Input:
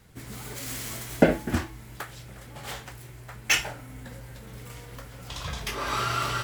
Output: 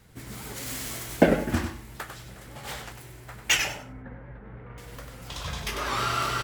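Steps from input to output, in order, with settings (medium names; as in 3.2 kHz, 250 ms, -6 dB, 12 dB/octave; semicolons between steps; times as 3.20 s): 3.73–4.78 s: low-pass 1.9 kHz 24 dB/octave; feedback delay 97 ms, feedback 22%, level -7 dB; warped record 78 rpm, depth 100 cents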